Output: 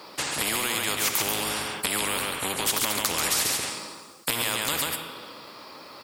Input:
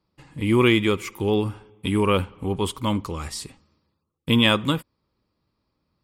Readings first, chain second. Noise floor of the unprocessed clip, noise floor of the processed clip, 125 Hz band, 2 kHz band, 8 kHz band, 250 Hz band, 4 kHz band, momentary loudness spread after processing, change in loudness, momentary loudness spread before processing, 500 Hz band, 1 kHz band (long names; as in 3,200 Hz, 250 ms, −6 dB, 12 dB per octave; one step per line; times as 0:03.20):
−77 dBFS, −45 dBFS, −15.5 dB, 0.0 dB, +15.0 dB, −14.5 dB, +0.5 dB, 17 LU, −3.0 dB, 15 LU, −10.0 dB, −1.0 dB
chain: sub-octave generator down 1 octave, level −1 dB
high-pass filter 520 Hz 12 dB per octave
downward compressor 6 to 1, threshold −35 dBFS, peak gain reduction 19 dB
on a send: single-tap delay 136 ms −7.5 dB
on the sum: coupled-rooms reverb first 0.62 s, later 1.9 s, from −21 dB, DRR 12.5 dB
boost into a limiter +25.5 dB
every bin compressed towards the loudest bin 4 to 1
level −1 dB